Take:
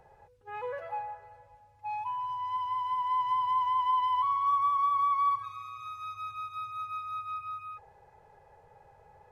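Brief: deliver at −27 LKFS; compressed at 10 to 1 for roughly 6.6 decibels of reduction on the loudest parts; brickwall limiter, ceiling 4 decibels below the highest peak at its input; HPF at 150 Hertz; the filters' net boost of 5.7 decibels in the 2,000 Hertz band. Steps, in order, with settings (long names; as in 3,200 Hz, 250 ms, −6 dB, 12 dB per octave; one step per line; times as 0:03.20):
high-pass filter 150 Hz
parametric band 2,000 Hz +7 dB
downward compressor 10 to 1, threshold −29 dBFS
level +7.5 dB
brickwall limiter −21.5 dBFS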